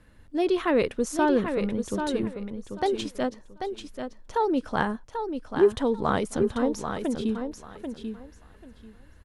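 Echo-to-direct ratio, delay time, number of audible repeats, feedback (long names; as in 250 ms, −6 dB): −7.0 dB, 789 ms, 3, 20%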